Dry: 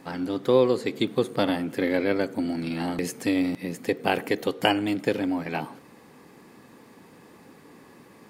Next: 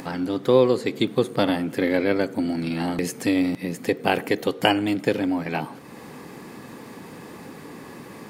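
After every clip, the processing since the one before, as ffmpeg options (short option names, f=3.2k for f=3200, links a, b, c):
-filter_complex "[0:a]equalizer=f=140:t=o:w=0.77:g=2,asplit=2[a][b];[b]acompressor=mode=upward:threshold=-26dB:ratio=2.5,volume=-1dB[c];[a][c]amix=inputs=2:normalize=0,volume=-3dB"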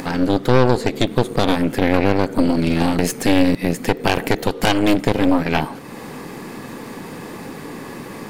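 -af "aeval=exprs='0.891*(cos(1*acos(clip(val(0)/0.891,-1,1)))-cos(1*PI/2))+0.178*(cos(8*acos(clip(val(0)/0.891,-1,1)))-cos(8*PI/2))':c=same,alimiter=limit=-10dB:level=0:latency=1:release=112,volume=7.5dB"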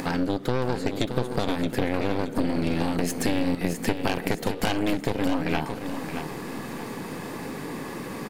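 -af "acompressor=threshold=-19dB:ratio=4,aecho=1:1:622|1244|1866|2488:0.376|0.12|0.0385|0.0123,volume=-2.5dB"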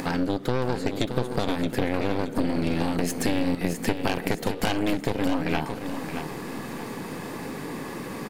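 -af anull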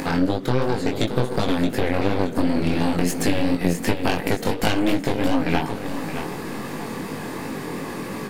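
-af "flanger=delay=18.5:depth=4.9:speed=2.8,volume=7dB"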